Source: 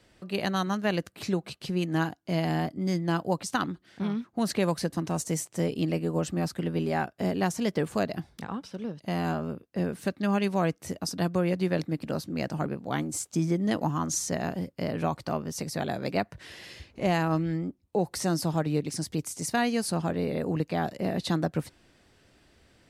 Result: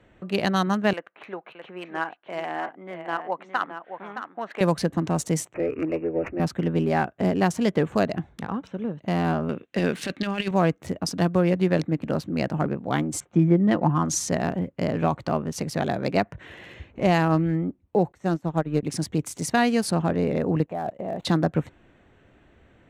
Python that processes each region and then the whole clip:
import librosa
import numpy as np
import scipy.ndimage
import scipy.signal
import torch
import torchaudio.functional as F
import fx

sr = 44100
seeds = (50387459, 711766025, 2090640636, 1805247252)

y = fx.chain(x, sr, fx.bandpass_edges(low_hz=710.0, high_hz=2600.0),
    fx.air_absorb(metres=66.0),
    fx.echo_single(ms=618, db=-8.5), at=(0.93, 4.61))
y = fx.chain(y, sr, fx.lowpass(hz=8600.0, slope=24),
    fx.fixed_phaser(hz=450.0, stages=4),
    fx.resample_bad(factor=8, down='none', up='filtered'), at=(5.54, 6.4))
y = fx.chain(y, sr, fx.weighting(curve='D'),
    fx.over_compress(threshold_db=-29.0, ratio=-0.5), at=(9.49, 10.51))
y = fx.chain(y, sr, fx.lowpass(hz=2700.0, slope=12),
    fx.comb(ms=5.7, depth=0.38), at=(13.2, 14.05))
y = fx.chain(y, sr, fx.law_mismatch(coded='A'),
    fx.upward_expand(threshold_db=-37.0, expansion=2.5), at=(18.12, 18.83))
y = fx.chain(y, sr, fx.dead_time(dead_ms=0.086),
    fx.level_steps(step_db=20),
    fx.peak_eq(hz=680.0, db=10.0, octaves=0.96), at=(20.66, 21.25))
y = fx.wiener(y, sr, points=9)
y = fx.high_shelf(y, sr, hz=9500.0, db=-6.5)
y = y * 10.0 ** (5.5 / 20.0)